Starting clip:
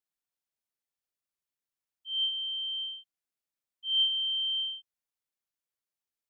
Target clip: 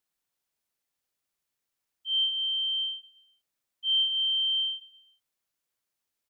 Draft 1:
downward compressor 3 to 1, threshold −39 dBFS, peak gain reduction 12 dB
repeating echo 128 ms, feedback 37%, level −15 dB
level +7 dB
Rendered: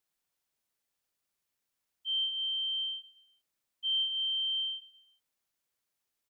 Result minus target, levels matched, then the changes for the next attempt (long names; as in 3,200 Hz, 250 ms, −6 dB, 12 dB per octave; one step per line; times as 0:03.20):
downward compressor: peak gain reduction +5.5 dB
change: downward compressor 3 to 1, threshold −31 dBFS, peak gain reduction 6.5 dB